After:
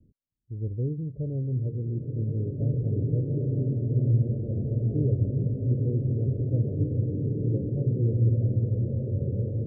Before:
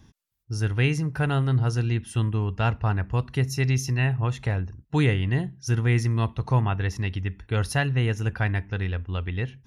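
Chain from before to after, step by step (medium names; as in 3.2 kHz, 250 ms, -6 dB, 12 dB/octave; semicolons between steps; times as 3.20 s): steep low-pass 590 Hz 96 dB/octave; swelling reverb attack 2430 ms, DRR -3.5 dB; trim -6 dB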